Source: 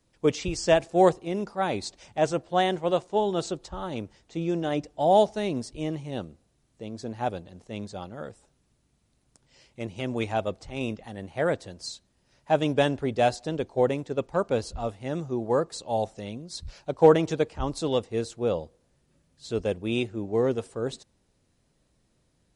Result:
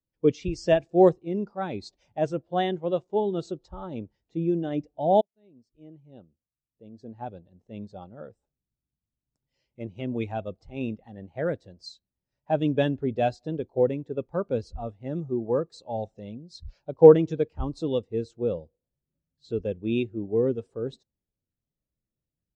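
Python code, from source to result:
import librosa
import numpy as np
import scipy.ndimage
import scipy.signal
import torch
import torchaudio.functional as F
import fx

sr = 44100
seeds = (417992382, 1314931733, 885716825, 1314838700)

y = fx.edit(x, sr, fx.fade_in_span(start_s=5.21, length_s=2.82), tone=tone)
y = scipy.signal.sosfilt(scipy.signal.butter(2, 7200.0, 'lowpass', fs=sr, output='sos'), y)
y = fx.dynamic_eq(y, sr, hz=720.0, q=0.86, threshold_db=-33.0, ratio=4.0, max_db=-6)
y = fx.spectral_expand(y, sr, expansion=1.5)
y = y * 10.0 ** (7.0 / 20.0)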